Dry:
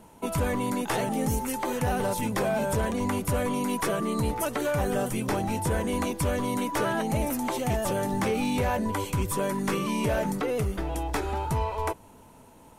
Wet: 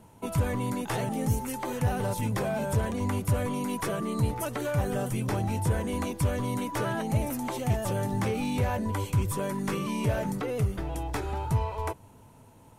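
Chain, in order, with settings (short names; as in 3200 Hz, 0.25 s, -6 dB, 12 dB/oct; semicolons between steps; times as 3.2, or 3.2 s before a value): bell 110 Hz +11 dB 0.78 oct; gain -4 dB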